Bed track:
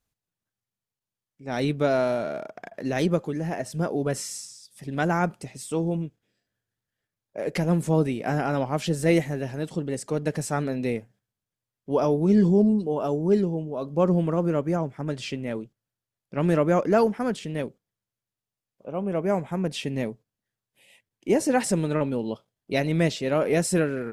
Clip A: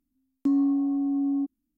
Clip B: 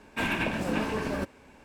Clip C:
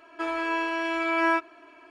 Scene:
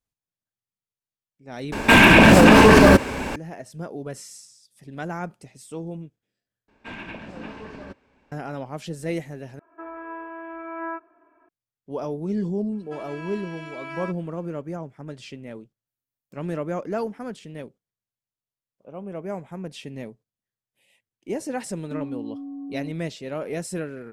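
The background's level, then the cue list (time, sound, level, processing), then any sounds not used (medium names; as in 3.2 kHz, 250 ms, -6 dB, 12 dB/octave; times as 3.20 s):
bed track -7.5 dB
1.72 s: replace with B -1.5 dB + loudness maximiser +27 dB
6.68 s: replace with B -8.5 dB + low-pass 4.9 kHz
9.59 s: replace with C -7.5 dB + low-pass 1.6 kHz 24 dB/octave
12.72 s: add C -12.5 dB + treble shelf 4.1 kHz +7 dB
15.87 s: add A -7 dB + differentiator
21.46 s: add A -9.5 dB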